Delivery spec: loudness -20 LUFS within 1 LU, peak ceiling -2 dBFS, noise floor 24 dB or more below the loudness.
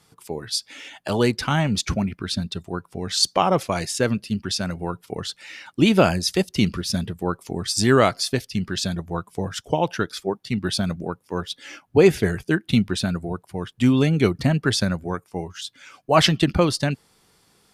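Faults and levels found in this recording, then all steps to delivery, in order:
loudness -22.5 LUFS; peak -2.5 dBFS; loudness target -20.0 LUFS
-> gain +2.5 dB; limiter -2 dBFS

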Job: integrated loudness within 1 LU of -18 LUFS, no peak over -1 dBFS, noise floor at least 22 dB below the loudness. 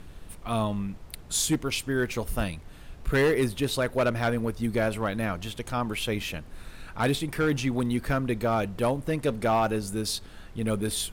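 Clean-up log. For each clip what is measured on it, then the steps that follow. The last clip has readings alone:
clipped 1.0%; flat tops at -18.0 dBFS; noise floor -47 dBFS; noise floor target -50 dBFS; loudness -28.0 LUFS; peak -18.0 dBFS; loudness target -18.0 LUFS
-> clip repair -18 dBFS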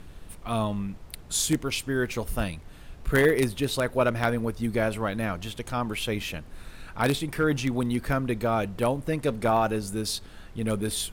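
clipped 0.0%; noise floor -47 dBFS; noise floor target -50 dBFS
-> noise print and reduce 6 dB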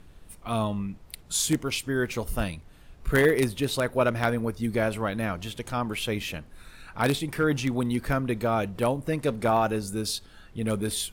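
noise floor -52 dBFS; loudness -27.5 LUFS; peak -9.0 dBFS; loudness target -18.0 LUFS
-> gain +9.5 dB; limiter -1 dBFS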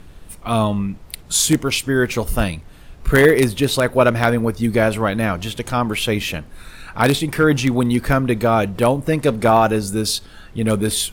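loudness -18.0 LUFS; peak -1.0 dBFS; noise floor -42 dBFS

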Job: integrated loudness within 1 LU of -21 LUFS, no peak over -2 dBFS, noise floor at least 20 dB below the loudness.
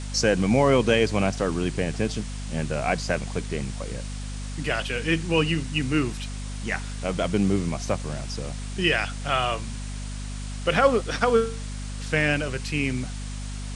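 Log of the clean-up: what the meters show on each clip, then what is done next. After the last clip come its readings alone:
hum 50 Hz; harmonics up to 250 Hz; hum level -31 dBFS; noise floor -33 dBFS; noise floor target -46 dBFS; loudness -25.5 LUFS; peak -5.0 dBFS; loudness target -21.0 LUFS
-> notches 50/100/150/200/250 Hz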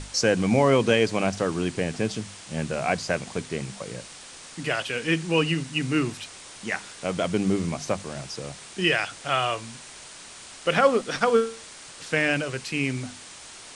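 hum none; noise floor -44 dBFS; noise floor target -46 dBFS
-> noise print and reduce 6 dB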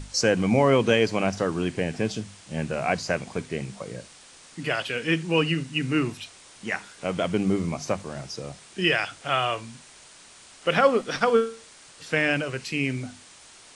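noise floor -50 dBFS; loudness -25.5 LUFS; peak -4.5 dBFS; loudness target -21.0 LUFS
-> gain +4.5 dB; limiter -2 dBFS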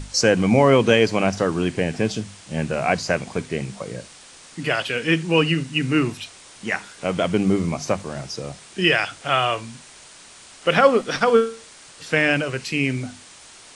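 loudness -21.0 LUFS; peak -2.0 dBFS; noise floor -46 dBFS

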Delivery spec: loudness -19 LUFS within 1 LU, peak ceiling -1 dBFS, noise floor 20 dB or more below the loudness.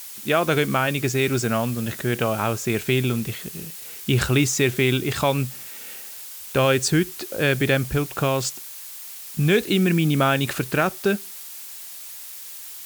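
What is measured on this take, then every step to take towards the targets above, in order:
noise floor -38 dBFS; noise floor target -42 dBFS; loudness -22.0 LUFS; peak -5.5 dBFS; loudness target -19.0 LUFS
-> noise print and reduce 6 dB; gain +3 dB

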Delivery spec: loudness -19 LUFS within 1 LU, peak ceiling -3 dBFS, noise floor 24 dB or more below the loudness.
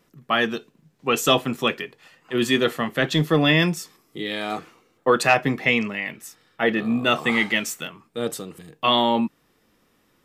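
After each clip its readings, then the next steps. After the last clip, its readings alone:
loudness -22.0 LUFS; peak -4.5 dBFS; loudness target -19.0 LUFS
-> gain +3 dB; limiter -3 dBFS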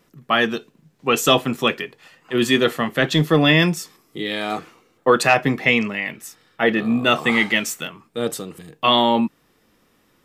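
loudness -19.0 LUFS; peak -3.0 dBFS; noise floor -62 dBFS

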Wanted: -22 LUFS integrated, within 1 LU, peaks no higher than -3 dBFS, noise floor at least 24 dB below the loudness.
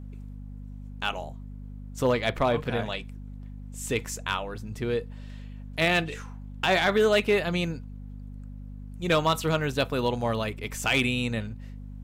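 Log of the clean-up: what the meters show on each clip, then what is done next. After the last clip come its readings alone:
clipped 0.3%; flat tops at -15.0 dBFS; hum 50 Hz; harmonics up to 250 Hz; hum level -38 dBFS; loudness -27.0 LUFS; peak -15.0 dBFS; loudness target -22.0 LUFS
-> clip repair -15 dBFS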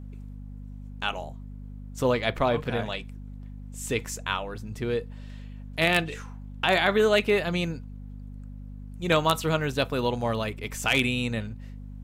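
clipped 0.0%; hum 50 Hz; harmonics up to 250 Hz; hum level -37 dBFS
-> de-hum 50 Hz, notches 5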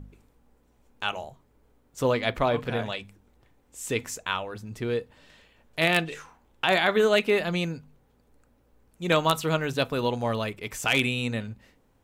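hum none; loudness -26.5 LUFS; peak -6.0 dBFS; loudness target -22.0 LUFS
-> gain +4.5 dB; limiter -3 dBFS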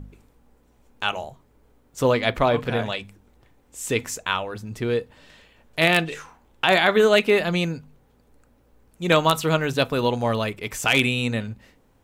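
loudness -22.0 LUFS; peak -3.0 dBFS; noise floor -60 dBFS

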